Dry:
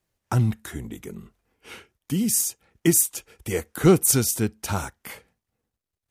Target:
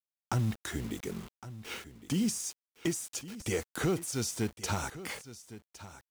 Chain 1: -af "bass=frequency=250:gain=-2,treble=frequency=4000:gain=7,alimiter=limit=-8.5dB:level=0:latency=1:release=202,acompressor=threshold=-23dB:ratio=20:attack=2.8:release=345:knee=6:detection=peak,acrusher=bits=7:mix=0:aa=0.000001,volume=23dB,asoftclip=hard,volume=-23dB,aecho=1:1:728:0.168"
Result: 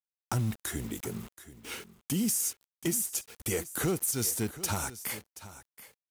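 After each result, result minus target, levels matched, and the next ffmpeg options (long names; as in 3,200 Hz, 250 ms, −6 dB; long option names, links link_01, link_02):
echo 383 ms early; 8,000 Hz band +3.5 dB
-af "bass=frequency=250:gain=-2,treble=frequency=4000:gain=7,alimiter=limit=-8.5dB:level=0:latency=1:release=202,acompressor=threshold=-23dB:ratio=20:attack=2.8:release=345:knee=6:detection=peak,acrusher=bits=7:mix=0:aa=0.000001,volume=23dB,asoftclip=hard,volume=-23dB,aecho=1:1:1111:0.168"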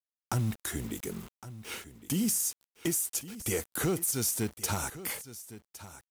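8,000 Hz band +3.5 dB
-af "bass=frequency=250:gain=-2,treble=frequency=4000:gain=7,alimiter=limit=-8.5dB:level=0:latency=1:release=202,acompressor=threshold=-23dB:ratio=20:attack=2.8:release=345:knee=6:detection=peak,lowpass=6000,acrusher=bits=7:mix=0:aa=0.000001,volume=23dB,asoftclip=hard,volume=-23dB,aecho=1:1:1111:0.168"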